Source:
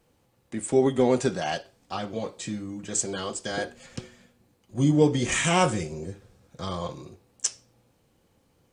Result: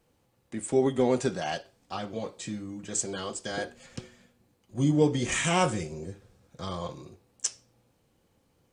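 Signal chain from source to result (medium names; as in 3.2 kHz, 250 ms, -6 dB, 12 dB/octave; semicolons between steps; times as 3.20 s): trim -3 dB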